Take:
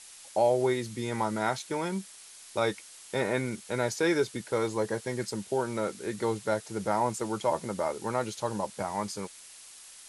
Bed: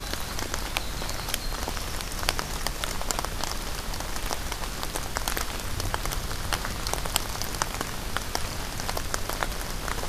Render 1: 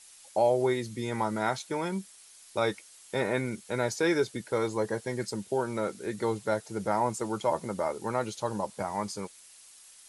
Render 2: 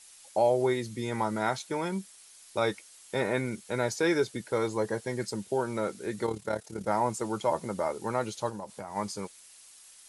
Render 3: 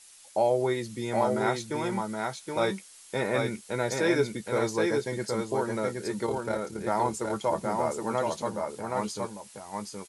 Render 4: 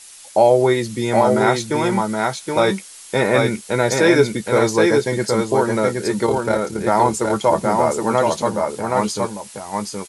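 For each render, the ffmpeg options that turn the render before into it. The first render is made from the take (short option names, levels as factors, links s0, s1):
-af "afftdn=nr=6:nf=-50"
-filter_complex "[0:a]asettb=1/sr,asplit=3[s0][s1][s2];[s0]atrim=end=6.264[s3];[s1]atrim=start=6.26:end=6.88,asetpts=PTS-STARTPTS,afade=t=in:d=0.004:c=qsin,afade=t=out:st=0.616:d=0.004:c=qsin,tremolo=f=36:d=0.71[s4];[s2]atrim=start=6.876[s5];[s3][s4]acrossfade=d=0.004:c1=hsin:c2=qsin[s6];[s6][s5]acrossfade=d=0.004:c1=qsin:c2=hsin,asplit=3[s7][s8][s9];[s7]afade=t=out:st=8.49:d=0.02[s10];[s8]acompressor=threshold=0.0178:ratio=5:attack=3.2:release=140:knee=1:detection=peak,afade=t=in:st=8.49:d=0.02,afade=t=out:st=8.95:d=0.02[s11];[s9]afade=t=in:st=8.95:d=0.02[s12];[s10][s11][s12]amix=inputs=3:normalize=0"
-filter_complex "[0:a]asplit=2[s0][s1];[s1]adelay=14,volume=0.251[s2];[s0][s2]amix=inputs=2:normalize=0,aecho=1:1:771:0.668"
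-af "volume=3.76,alimiter=limit=0.708:level=0:latency=1"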